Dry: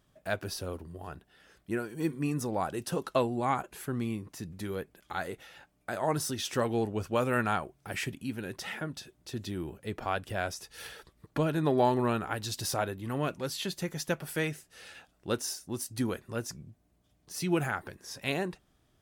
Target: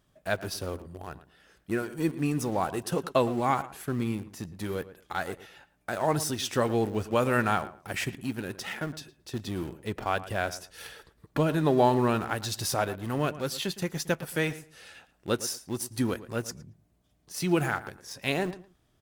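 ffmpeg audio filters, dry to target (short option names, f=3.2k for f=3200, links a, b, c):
-filter_complex "[0:a]asplit=2[a][b];[b]aeval=exprs='val(0)*gte(abs(val(0)),0.0168)':c=same,volume=-7dB[c];[a][c]amix=inputs=2:normalize=0,asplit=2[d][e];[e]adelay=112,lowpass=f=2.2k:p=1,volume=-15dB,asplit=2[f][g];[g]adelay=112,lowpass=f=2.2k:p=1,volume=0.21[h];[d][f][h]amix=inputs=3:normalize=0"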